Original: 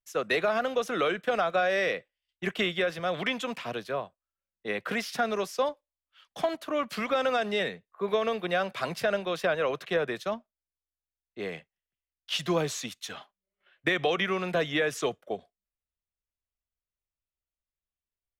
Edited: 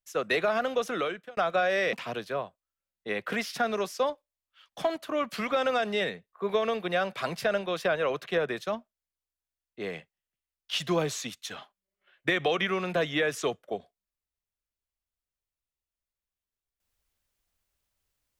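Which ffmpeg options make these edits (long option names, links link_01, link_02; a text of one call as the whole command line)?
ffmpeg -i in.wav -filter_complex "[0:a]asplit=3[link_01][link_02][link_03];[link_01]atrim=end=1.37,asetpts=PTS-STARTPTS,afade=type=out:start_time=0.88:duration=0.49[link_04];[link_02]atrim=start=1.37:end=1.932,asetpts=PTS-STARTPTS,afade=type=in:duration=0.004:curve=hsin[link_05];[link_03]atrim=start=3.518[link_06];[link_04][link_05]concat=n=2:v=0:a=1[link_07];[link_07][link_06]acrossfade=duration=0.004:curve1=hsin:curve2=hsin" out.wav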